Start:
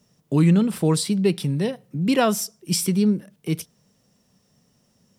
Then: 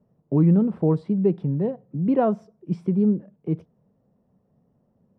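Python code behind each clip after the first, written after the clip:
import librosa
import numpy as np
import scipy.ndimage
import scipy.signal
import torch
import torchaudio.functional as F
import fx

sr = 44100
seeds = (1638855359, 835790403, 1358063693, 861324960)

y = scipy.signal.sosfilt(scipy.signal.cheby1(2, 1.0, 710.0, 'lowpass', fs=sr, output='sos'), x)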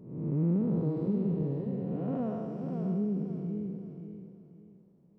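y = fx.spec_blur(x, sr, span_ms=420.0)
y = fx.echo_feedback(y, sr, ms=533, feedback_pct=31, wet_db=-5.5)
y = y * librosa.db_to_amplitude(-5.0)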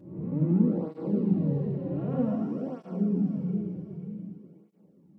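y = fx.room_shoebox(x, sr, seeds[0], volume_m3=2500.0, walls='furnished', distance_m=2.3)
y = fx.flanger_cancel(y, sr, hz=0.53, depth_ms=4.6)
y = y * librosa.db_to_amplitude(4.0)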